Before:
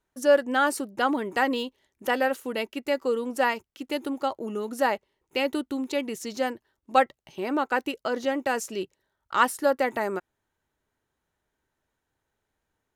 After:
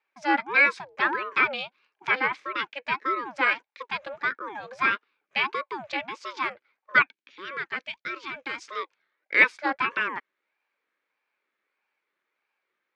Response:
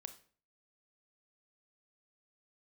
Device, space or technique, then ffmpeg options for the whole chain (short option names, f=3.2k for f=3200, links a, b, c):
voice changer toy: -filter_complex "[0:a]aeval=exprs='val(0)*sin(2*PI*550*n/s+550*0.55/1.6*sin(2*PI*1.6*n/s))':c=same,highpass=440,equalizer=f=700:t=q:w=4:g=-10,equalizer=f=1.6k:t=q:w=4:g=6,equalizer=f=2.3k:t=q:w=4:g=9,lowpass=f=4.8k:w=0.5412,lowpass=f=4.8k:w=1.3066,asettb=1/sr,asplit=3[a][b][c];[a]atrim=end=7.024[d];[b]atrim=start=7.02:end=8.62,asetpts=PTS-STARTPTS,afade=t=in:d=0.004:c=qsin,afade=t=out:st=1.596:d=0.004:c=qsin,equalizer=f=125:t=o:w=1:g=-4,equalizer=f=500:t=o:w=1:g=-7,equalizer=f=1k:t=o:w=1:g=-10,equalizer=f=2k:t=o:w=1:g=-4[e];[c]atrim=start=8.616[f];[d][e]acrossfade=d=0.004:c1=hsin:c2=qsin[g];[g][f]acrossfade=d=0.004:c1=qsin:c2=hsin,volume=2dB"